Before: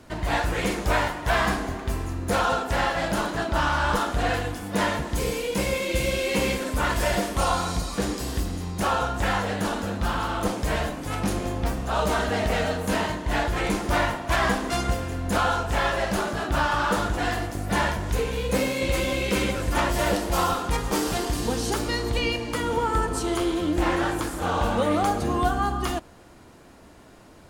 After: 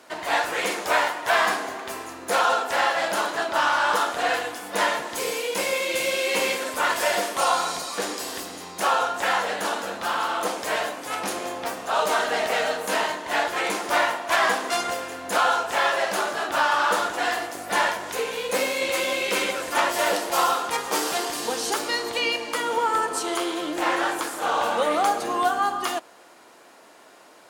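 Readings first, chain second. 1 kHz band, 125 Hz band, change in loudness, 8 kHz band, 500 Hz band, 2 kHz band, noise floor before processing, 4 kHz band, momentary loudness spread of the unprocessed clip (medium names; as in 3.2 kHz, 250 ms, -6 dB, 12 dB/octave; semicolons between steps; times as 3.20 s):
+3.0 dB, -21.0 dB, +1.5 dB, +3.5 dB, +0.5 dB, +3.5 dB, -49 dBFS, +3.5 dB, 4 LU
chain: high-pass 510 Hz 12 dB/octave; trim +3.5 dB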